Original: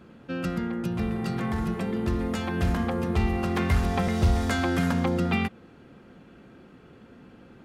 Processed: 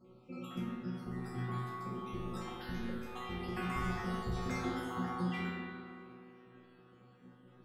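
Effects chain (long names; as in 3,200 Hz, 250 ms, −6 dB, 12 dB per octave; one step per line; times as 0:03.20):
time-frequency cells dropped at random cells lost 63%
resonators tuned to a chord B2 fifth, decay 0.56 s
delay with a band-pass on its return 72 ms, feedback 85%, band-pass 570 Hz, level −6 dB
spring reverb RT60 1.7 s, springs 39/56 ms, chirp 20 ms, DRR −1 dB
level +7 dB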